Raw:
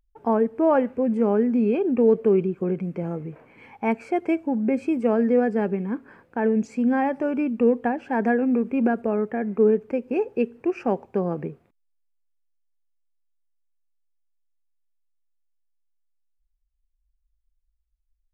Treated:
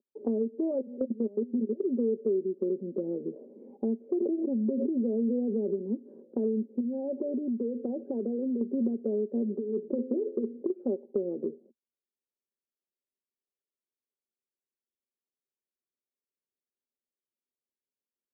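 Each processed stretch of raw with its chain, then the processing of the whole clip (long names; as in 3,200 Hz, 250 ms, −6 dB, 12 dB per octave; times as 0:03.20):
0:00.71–0:01.83: hum removal 81.29 Hz, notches 11 + output level in coarse steps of 21 dB
0:04.20–0:05.79: Butterworth band-reject 1,900 Hz, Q 0.73 + background raised ahead of every attack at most 22 dB per second
0:06.80–0:08.61: spectral envelope exaggerated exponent 1.5 + downward compressor 5 to 1, threshold −28 dBFS
0:09.35–0:10.70: compressor whose output falls as the input rises −23 dBFS, ratio −0.5 + hum removal 86.07 Hz, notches 7
whole clip: Chebyshev band-pass filter 230–530 Hz, order 3; comb filter 5.1 ms, depth 51%; downward compressor 4 to 1, threshold −36 dBFS; level +7 dB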